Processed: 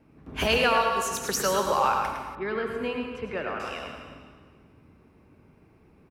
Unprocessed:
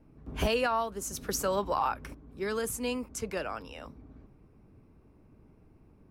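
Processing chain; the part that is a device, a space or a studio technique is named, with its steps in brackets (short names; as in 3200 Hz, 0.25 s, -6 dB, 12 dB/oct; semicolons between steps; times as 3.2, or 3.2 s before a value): PA in a hall (HPF 110 Hz 6 dB/oct; bell 2400 Hz +6.5 dB 2 oct; echo 0.108 s -7 dB; reverb RT60 1.6 s, pre-delay 72 ms, DRR 4.5 dB); 2.35–3.6 air absorption 450 m; gain +2 dB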